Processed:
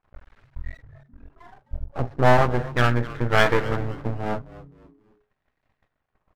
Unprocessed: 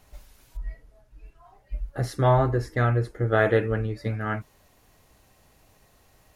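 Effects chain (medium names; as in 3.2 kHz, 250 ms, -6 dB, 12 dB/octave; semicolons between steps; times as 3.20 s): gate -55 dBFS, range -20 dB; LFO low-pass sine 0.4 Hz 770–1900 Hz; half-wave rectifier; on a send: frequency-shifting echo 259 ms, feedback 37%, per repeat -140 Hz, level -17 dB; on the sum: trim +4 dB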